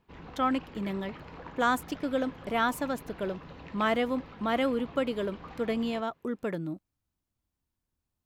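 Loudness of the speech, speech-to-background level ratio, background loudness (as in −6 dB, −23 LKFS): −31.5 LKFS, 15.5 dB, −47.0 LKFS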